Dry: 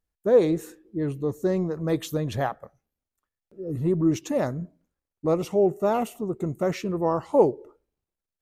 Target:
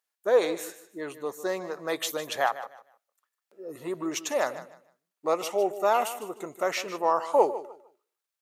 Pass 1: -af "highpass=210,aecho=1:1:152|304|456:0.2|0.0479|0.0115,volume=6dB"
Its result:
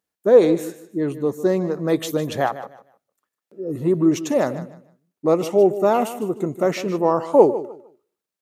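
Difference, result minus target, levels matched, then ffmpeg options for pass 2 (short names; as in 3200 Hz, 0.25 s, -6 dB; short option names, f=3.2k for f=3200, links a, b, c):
250 Hz band +7.5 dB
-af "highpass=820,aecho=1:1:152|304|456:0.2|0.0479|0.0115,volume=6dB"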